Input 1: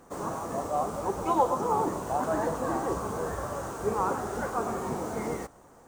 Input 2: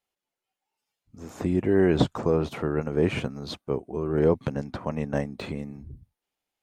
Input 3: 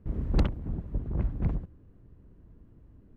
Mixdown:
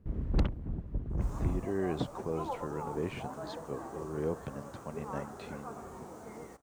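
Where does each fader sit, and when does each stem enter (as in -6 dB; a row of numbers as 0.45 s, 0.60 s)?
-14.0 dB, -12.5 dB, -3.5 dB; 1.10 s, 0.00 s, 0.00 s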